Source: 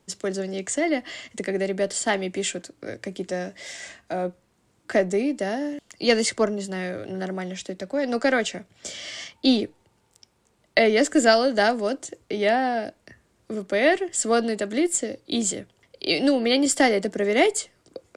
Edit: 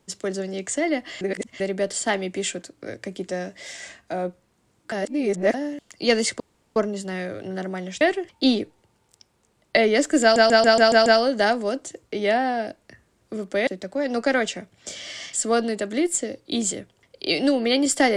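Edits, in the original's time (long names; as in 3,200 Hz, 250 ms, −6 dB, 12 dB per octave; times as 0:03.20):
0:01.21–0:01.60: reverse
0:04.92–0:05.54: reverse
0:06.40: splice in room tone 0.36 s
0:07.65–0:09.31: swap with 0:13.85–0:14.13
0:11.24: stutter 0.14 s, 7 plays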